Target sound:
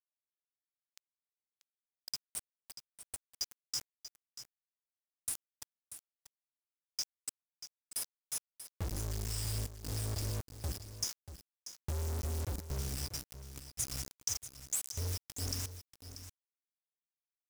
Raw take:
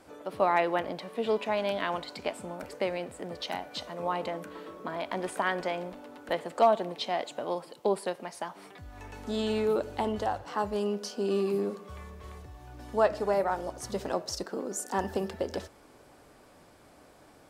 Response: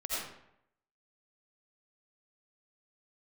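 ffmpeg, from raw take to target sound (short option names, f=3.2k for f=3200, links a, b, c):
-af "afftfilt=real='re*(1-between(b*sr/4096,120,4400))':imag='im*(1-between(b*sr/4096,120,4400))':win_size=4096:overlap=0.75,agate=range=-40dB:threshold=-48dB:ratio=16:detection=peak,bandreject=f=54.06:t=h:w=4,bandreject=f=108.12:t=h:w=4,bandreject=f=162.18:t=h:w=4,bandreject=f=216.24:t=h:w=4,bandreject=f=270.3:t=h:w=4,bandreject=f=324.36:t=h:w=4,bandreject=f=378.42:t=h:w=4,bandreject=f=432.48:t=h:w=4,bandreject=f=486.54:t=h:w=4,bandreject=f=540.6:t=h:w=4,bandreject=f=594.66:t=h:w=4,bandreject=f=648.72:t=h:w=4,bandreject=f=702.78:t=h:w=4,bandreject=f=756.84:t=h:w=4,bandreject=f=810.9:t=h:w=4,bandreject=f=864.96:t=h:w=4,bandreject=f=919.02:t=h:w=4,bandreject=f=973.08:t=h:w=4,bandreject=f=1.02714k:t=h:w=4,bandreject=f=1.0812k:t=h:w=4,bandreject=f=1.13526k:t=h:w=4,bandreject=f=1.18932k:t=h:w=4,bandreject=f=1.24338k:t=h:w=4,bandreject=f=1.29744k:t=h:w=4,bandreject=f=1.3515k:t=h:w=4,bandreject=f=1.40556k:t=h:w=4,bandreject=f=1.45962k:t=h:w=4,bandreject=f=1.51368k:t=h:w=4,bandreject=f=1.56774k:t=h:w=4,acompressor=threshold=-50dB:ratio=5,asetrate=48091,aresample=44100,atempo=0.917004,acrusher=bits=8:mix=0:aa=0.000001,aecho=1:1:637:0.251,volume=15dB"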